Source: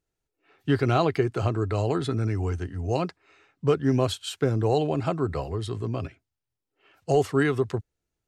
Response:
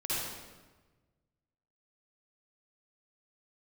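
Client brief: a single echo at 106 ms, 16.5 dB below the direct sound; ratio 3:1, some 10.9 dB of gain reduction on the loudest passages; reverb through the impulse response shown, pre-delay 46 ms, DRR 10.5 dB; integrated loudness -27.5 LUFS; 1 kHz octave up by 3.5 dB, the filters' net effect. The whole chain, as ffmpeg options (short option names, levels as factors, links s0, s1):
-filter_complex "[0:a]equalizer=f=1000:t=o:g=5,acompressor=threshold=0.0282:ratio=3,aecho=1:1:106:0.15,asplit=2[s0][s1];[1:a]atrim=start_sample=2205,adelay=46[s2];[s1][s2]afir=irnorm=-1:irlink=0,volume=0.15[s3];[s0][s3]amix=inputs=2:normalize=0,volume=2"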